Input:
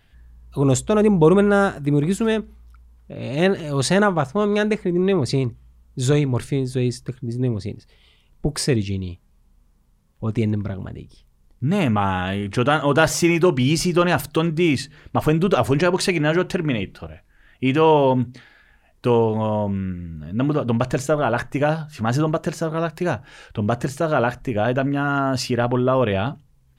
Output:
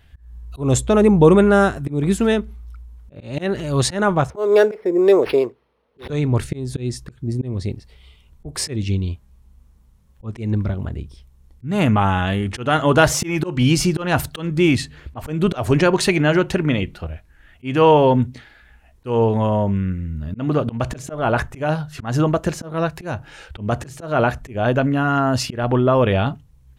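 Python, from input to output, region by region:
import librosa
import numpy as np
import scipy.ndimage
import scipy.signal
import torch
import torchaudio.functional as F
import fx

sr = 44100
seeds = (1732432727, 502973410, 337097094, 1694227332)

y = fx.chain(x, sr, fx.highpass_res(hz=460.0, q=3.1),
    fx.resample_linear(factor=6), at=(4.3, 6.1))
y = fx.peak_eq(y, sr, hz=68.0, db=12.0, octaves=0.65)
y = fx.notch(y, sr, hz=4800.0, q=25.0)
y = fx.auto_swell(y, sr, attack_ms=200.0)
y = F.gain(torch.from_numpy(y), 2.5).numpy()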